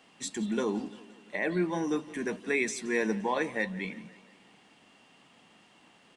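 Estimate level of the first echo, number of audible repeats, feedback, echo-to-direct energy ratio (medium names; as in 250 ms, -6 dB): -19.5 dB, 4, 57%, -18.0 dB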